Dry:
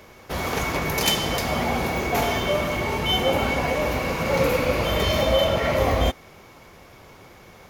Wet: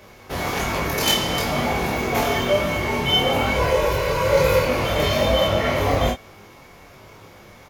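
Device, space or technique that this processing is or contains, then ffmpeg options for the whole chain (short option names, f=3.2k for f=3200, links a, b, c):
double-tracked vocal: -filter_complex "[0:a]asettb=1/sr,asplit=3[a][b][c];[a]atrim=end=3.554[d];[b]atrim=start=3.55:end=4.65,asetpts=PTS-STARTPTS,afade=t=in:d=0.004:c=qsin,afade=t=out:st=1.096:d=0.004:c=qsin,aecho=1:1:2:0.74,atrim=end_sample=48510[e];[c]atrim=start=4.646[f];[d][e]acrossfade=d=0.004:c1=hsin:c2=qsin[g];[g][f]acrossfade=d=0.004:c1=qsin:c2=hsin,asplit=2[h][i];[i]adelay=29,volume=-4dB[j];[h][j]amix=inputs=2:normalize=0,flanger=delay=19:depth=3.2:speed=1.1,volume=3.5dB"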